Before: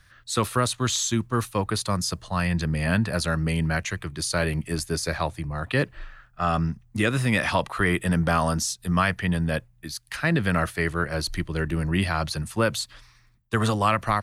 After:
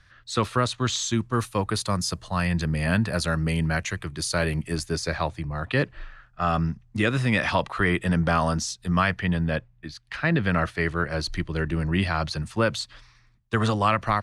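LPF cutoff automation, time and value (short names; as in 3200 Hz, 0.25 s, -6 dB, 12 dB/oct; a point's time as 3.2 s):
0.91 s 5700 Hz
1.5 s 11000 Hz
4.53 s 11000 Hz
5.13 s 6400 Hz
8.96 s 6400 Hz
9.88 s 3300 Hz
11.09 s 6300 Hz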